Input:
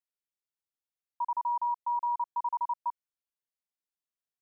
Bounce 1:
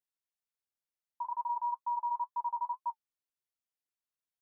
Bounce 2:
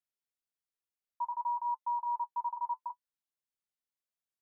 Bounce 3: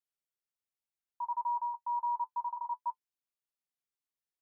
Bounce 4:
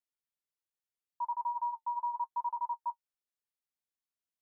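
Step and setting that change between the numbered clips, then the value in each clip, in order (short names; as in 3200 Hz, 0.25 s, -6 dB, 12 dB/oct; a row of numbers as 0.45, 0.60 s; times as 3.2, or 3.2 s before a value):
flange, rate: 2.1, 0.55, 0.23, 0.82 Hz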